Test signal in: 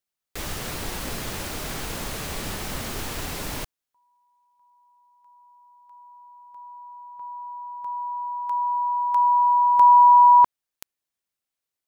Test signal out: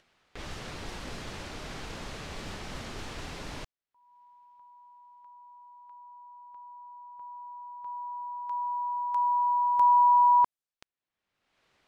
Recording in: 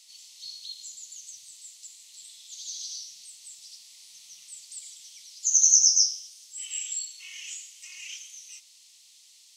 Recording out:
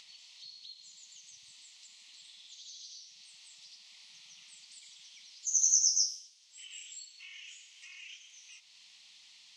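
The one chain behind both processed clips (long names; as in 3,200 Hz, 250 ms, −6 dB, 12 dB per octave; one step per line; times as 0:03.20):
low-pass that shuts in the quiet parts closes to 2,900 Hz, open at −19 dBFS
upward compression, threshold −36 dBFS
level −7.5 dB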